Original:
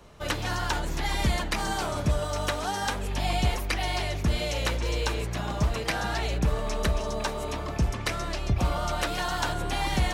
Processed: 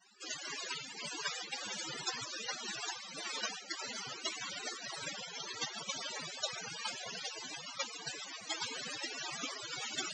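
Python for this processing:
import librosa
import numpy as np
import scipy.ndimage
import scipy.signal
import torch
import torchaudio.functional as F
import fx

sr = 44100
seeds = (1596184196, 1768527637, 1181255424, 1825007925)

y = fx.vibrato(x, sr, rate_hz=7.1, depth_cents=78.0)
y = fx.noise_vocoder(y, sr, seeds[0], bands=1)
y = fx.spec_topn(y, sr, count=32)
y = y * 10.0 ** (-4.0 / 20.0)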